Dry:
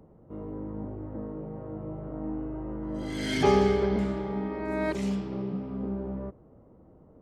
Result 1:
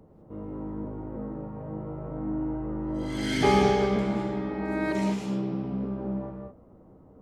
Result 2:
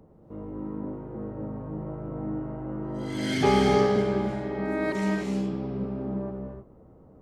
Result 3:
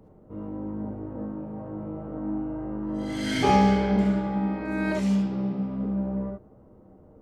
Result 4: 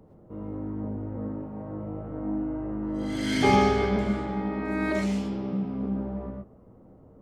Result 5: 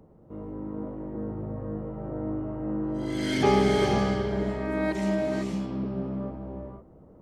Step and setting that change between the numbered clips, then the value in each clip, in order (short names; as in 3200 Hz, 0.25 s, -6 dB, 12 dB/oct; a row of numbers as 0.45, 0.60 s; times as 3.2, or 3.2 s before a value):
non-linear reverb, gate: 230, 340, 90, 150, 530 ms